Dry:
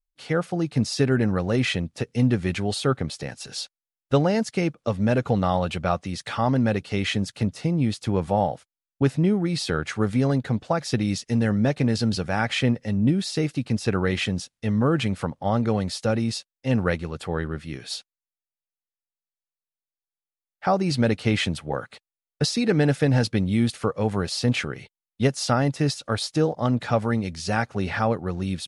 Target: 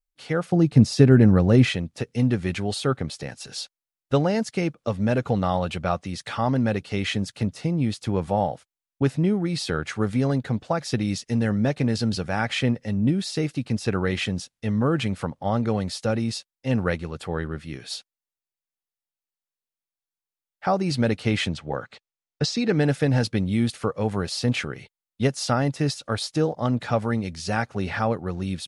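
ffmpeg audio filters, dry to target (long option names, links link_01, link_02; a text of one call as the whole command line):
ffmpeg -i in.wav -filter_complex "[0:a]asettb=1/sr,asplit=3[link_01][link_02][link_03];[link_01]atrim=end=0.524[link_04];[link_02]atrim=start=0.52:end=1.7,asetpts=PTS-STARTPTS,afade=type=in:duration=0.004:curve=qsin,afade=type=out:start_time=1.176:duration=0.004:curve=qsin,lowshelf=frequency=470:gain=10[link_05];[link_03]atrim=start=1.696[link_06];[link_04][link_05]acrossfade=duration=0.004:curve1=hsin:curve2=qsin[link_07];[link_07][link_06]acrossfade=duration=0.004:curve1=qsin:curve2=hsin,asettb=1/sr,asplit=3[link_08][link_09][link_10];[link_08]atrim=end=21.484[link_11];[link_09]atrim=start=21.48:end=22.76,asetpts=PTS-STARTPTS,afade=type=in:duration=0.004:curve=qsin,afade=type=out:start_time=1.276:duration=0.004:curve=qsin,lowpass=frequency=7300:width=0.5412,lowpass=frequency=7300:width=1.3066[link_12];[link_10]atrim=start=22.756[link_13];[link_11][link_12]acrossfade=duration=0.004:curve1=hsin:curve2=qsin[link_14];[link_14][link_13]acrossfade=duration=0.004:curve1=qsin:curve2=hsin,volume=-1dB" out.wav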